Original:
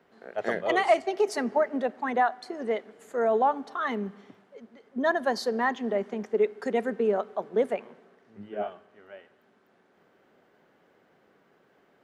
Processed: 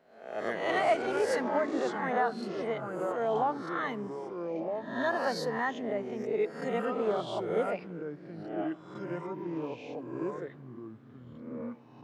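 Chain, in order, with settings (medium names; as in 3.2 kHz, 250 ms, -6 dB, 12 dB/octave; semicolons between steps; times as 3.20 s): reverse spectral sustain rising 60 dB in 0.62 s; ever faster or slower copies 117 ms, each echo -5 st, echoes 2, each echo -6 dB; trim -7 dB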